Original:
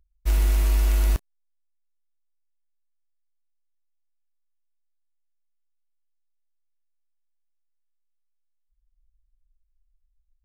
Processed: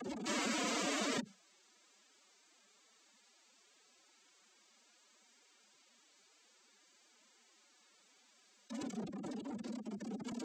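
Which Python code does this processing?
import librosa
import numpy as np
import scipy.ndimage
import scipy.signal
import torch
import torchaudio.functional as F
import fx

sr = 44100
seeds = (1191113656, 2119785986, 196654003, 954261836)

y = x + 0.5 * 10.0 ** (-31.0 / 20.0) * np.sign(x)
y = fx.noise_vocoder(y, sr, seeds[0], bands=16)
y = fx.pitch_keep_formants(y, sr, semitones=11.0)
y = fx.env_flatten(y, sr, amount_pct=50)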